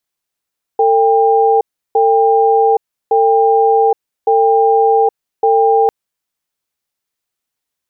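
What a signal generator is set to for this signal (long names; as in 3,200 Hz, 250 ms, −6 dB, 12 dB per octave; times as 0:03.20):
tone pair in a cadence 450 Hz, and 797 Hz, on 0.82 s, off 0.34 s, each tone −10.5 dBFS 5.10 s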